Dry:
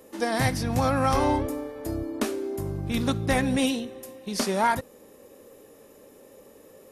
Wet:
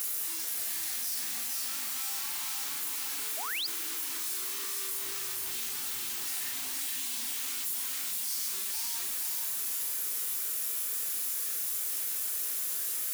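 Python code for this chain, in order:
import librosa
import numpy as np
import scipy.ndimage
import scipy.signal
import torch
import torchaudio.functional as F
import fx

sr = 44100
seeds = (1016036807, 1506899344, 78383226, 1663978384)

y = np.sign(x) * np.sqrt(np.mean(np.square(x)))
y = fx.stretch_vocoder_free(y, sr, factor=1.9)
y = fx.peak_eq(y, sr, hz=570.0, db=-10.5, octaves=0.53)
y = fx.doubler(y, sr, ms=39.0, db=-5.0)
y = fx.echo_feedback(y, sr, ms=469, feedback_pct=53, wet_db=-3.0)
y = fx.spec_paint(y, sr, seeds[0], shape='rise', start_s=3.37, length_s=0.3, low_hz=590.0, high_hz=5200.0, level_db=-22.0)
y = np.diff(y, prepend=0.0)
y = fx.env_flatten(y, sr, amount_pct=70)
y = F.gain(torch.from_numpy(y), -6.0).numpy()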